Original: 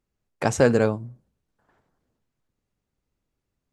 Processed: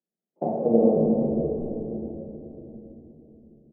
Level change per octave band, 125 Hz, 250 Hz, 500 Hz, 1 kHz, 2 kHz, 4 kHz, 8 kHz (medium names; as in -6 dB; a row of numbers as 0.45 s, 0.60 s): -3.5 dB, +4.5 dB, +1.0 dB, -2.5 dB, under -40 dB, under -40 dB, under -40 dB